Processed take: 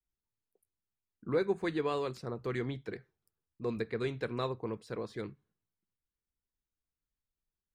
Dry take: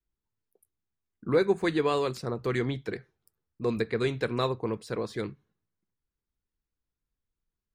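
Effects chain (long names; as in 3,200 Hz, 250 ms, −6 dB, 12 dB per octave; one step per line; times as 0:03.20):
high-shelf EQ 4,900 Hz −5.5 dB
level −6.5 dB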